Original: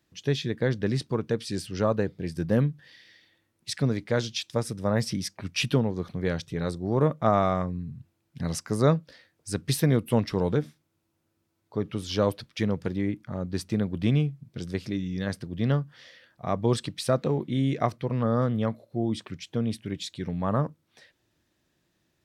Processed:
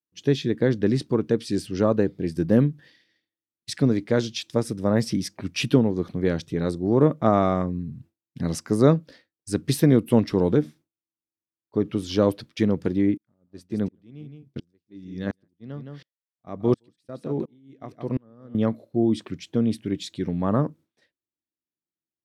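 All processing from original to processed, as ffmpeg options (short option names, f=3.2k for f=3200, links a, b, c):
-filter_complex "[0:a]asettb=1/sr,asplit=3[a][b][c];[a]atrim=end=13.174[d];[b]atrim=start=13.17:end=18.55,asetpts=PTS-STARTPTS,afade=t=in:d=0.004:c=qsin,afade=t=out:st=5.376:d=0.004:c=qsin,aecho=1:1:165:0.237,atrim=end_sample=237258,aeval=exprs='val(0)*pow(10,-38*if(lt(mod(-1.4*n/s,1),2*abs(-1.4)/1000),1-mod(-1.4*n/s,1)/(2*abs(-1.4)/1000),(mod(-1.4*n/s,1)-2*abs(-1.4)/1000)/(1-2*abs(-1.4)/1000))/20)':c=same[e];[c]atrim=start=18.546[f];[d][e]acrossfade=d=0.004:c1=hsin:c2=qsin[g];[g][f]acrossfade=d=0.004:c1=qsin:c2=hsin,agate=range=-33dB:threshold=-45dB:ratio=3:detection=peak,equalizer=f=300:w=1.1:g=9"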